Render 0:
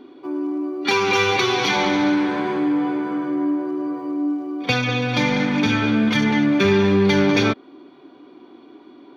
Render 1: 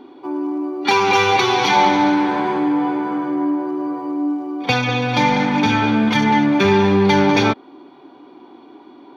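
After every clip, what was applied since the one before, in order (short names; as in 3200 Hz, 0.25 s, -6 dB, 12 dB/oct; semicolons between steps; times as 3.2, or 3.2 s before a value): bell 860 Hz +11 dB 0.35 oct; gain +1.5 dB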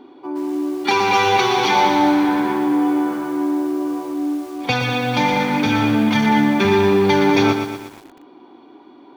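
lo-fi delay 0.119 s, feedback 55%, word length 6-bit, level -7 dB; gain -2 dB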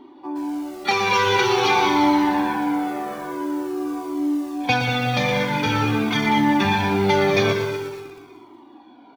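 on a send: feedback echo 0.185 s, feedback 44%, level -11 dB; on the sum: cascading flanger falling 0.47 Hz; gain +2.5 dB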